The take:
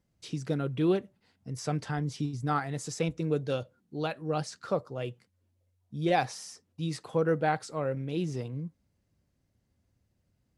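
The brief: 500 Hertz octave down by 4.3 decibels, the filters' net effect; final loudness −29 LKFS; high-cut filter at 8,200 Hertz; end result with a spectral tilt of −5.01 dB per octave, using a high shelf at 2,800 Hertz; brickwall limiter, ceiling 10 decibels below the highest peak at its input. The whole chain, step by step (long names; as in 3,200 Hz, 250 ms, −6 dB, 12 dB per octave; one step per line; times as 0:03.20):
low-pass filter 8,200 Hz
parametric band 500 Hz −5.5 dB
high-shelf EQ 2,800 Hz +6.5 dB
level +6.5 dB
brickwall limiter −16 dBFS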